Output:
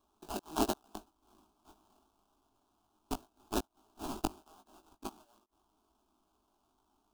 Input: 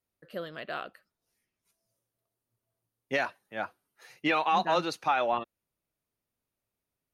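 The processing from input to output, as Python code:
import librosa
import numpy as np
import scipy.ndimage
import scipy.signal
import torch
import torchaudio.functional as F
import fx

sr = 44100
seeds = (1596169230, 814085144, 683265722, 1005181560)

y = fx.gate_flip(x, sr, shuts_db=-24.0, range_db=-40)
y = fx.high_shelf_res(y, sr, hz=1600.0, db=12.5, q=1.5)
y = fx.sample_hold(y, sr, seeds[0], rate_hz=2200.0, jitter_pct=20)
y = fx.fixed_phaser(y, sr, hz=510.0, stages=6)
y = fx.doubler(y, sr, ms=19.0, db=-6.5)
y = y * 10.0 ** (3.5 / 20.0)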